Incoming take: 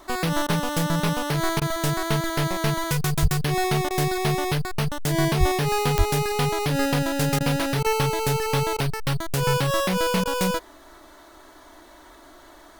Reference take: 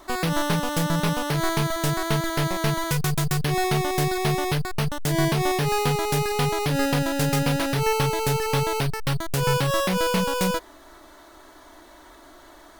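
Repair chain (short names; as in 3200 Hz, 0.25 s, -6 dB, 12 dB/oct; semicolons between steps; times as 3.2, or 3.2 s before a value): de-click; de-plosive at 3.21/5.39/5.97; interpolate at 0.47/1.6/3.89/7.39/7.83/8.77/10.24, 14 ms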